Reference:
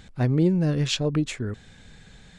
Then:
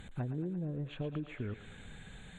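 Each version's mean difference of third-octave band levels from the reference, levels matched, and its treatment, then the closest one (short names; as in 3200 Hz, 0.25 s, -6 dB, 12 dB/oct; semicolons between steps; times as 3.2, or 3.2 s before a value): 8.5 dB: treble ducked by the level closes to 680 Hz, closed at -18.5 dBFS; compressor 6:1, threshold -34 dBFS, peak gain reduction 16.5 dB; Butterworth band-stop 5200 Hz, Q 1.5; thinning echo 0.114 s, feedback 81%, high-pass 600 Hz, level -10 dB; gain -1.5 dB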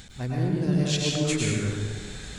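12.0 dB: high shelf 3800 Hz +11.5 dB; reverse; compressor 6:1, threshold -31 dBFS, peak gain reduction 14.5 dB; reverse; plate-style reverb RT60 1.8 s, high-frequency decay 0.55×, pre-delay 90 ms, DRR -4 dB; gain +3 dB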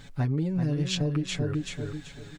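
6.5 dB: comb 7.1 ms, depth 80%; bit-crush 12-bit; on a send: feedback echo 0.384 s, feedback 28%, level -7 dB; on the sum: compressor, threshold -23 dBFS, peak gain reduction 10 dB; gain -1 dB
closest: third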